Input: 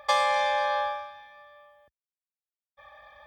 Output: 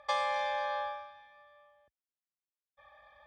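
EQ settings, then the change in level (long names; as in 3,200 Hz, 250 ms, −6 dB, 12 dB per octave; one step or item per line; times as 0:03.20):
high-frequency loss of the air 55 metres
−7.5 dB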